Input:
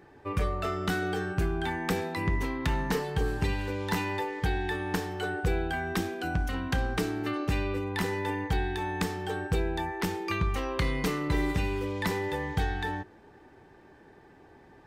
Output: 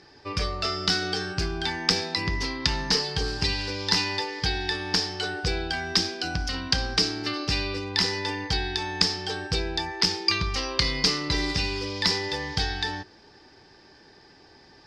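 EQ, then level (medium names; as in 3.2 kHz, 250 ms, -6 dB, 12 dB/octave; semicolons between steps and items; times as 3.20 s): resonant low-pass 5 kHz, resonance Q 9; treble shelf 2.7 kHz +11.5 dB; -1.0 dB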